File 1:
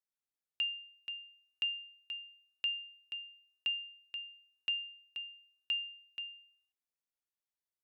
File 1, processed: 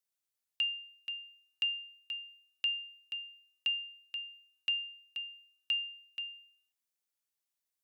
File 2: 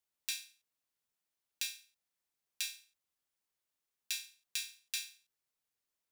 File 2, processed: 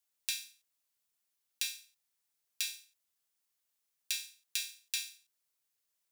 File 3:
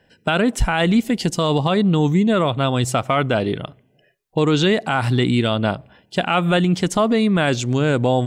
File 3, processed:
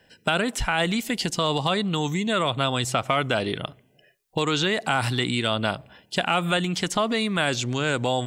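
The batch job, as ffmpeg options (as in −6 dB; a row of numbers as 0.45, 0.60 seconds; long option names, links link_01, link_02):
-filter_complex "[0:a]highshelf=frequency=3700:gain=7,acrossover=split=800|1800|4500[link_01][link_02][link_03][link_04];[link_01]acompressor=threshold=-23dB:ratio=4[link_05];[link_02]acompressor=threshold=-25dB:ratio=4[link_06];[link_03]acompressor=threshold=-28dB:ratio=4[link_07];[link_04]acompressor=threshold=-35dB:ratio=4[link_08];[link_05][link_06][link_07][link_08]amix=inputs=4:normalize=0,lowshelf=frequency=480:gain=-3"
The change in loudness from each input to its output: +2.5, +2.5, −5.5 LU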